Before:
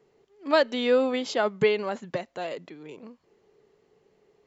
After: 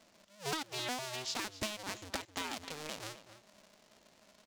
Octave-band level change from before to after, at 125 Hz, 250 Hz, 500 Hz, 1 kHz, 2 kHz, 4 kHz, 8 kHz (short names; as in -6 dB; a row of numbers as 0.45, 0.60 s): -7.0 dB, -15.0 dB, -21.5 dB, -10.0 dB, -10.0 dB, -4.5 dB, n/a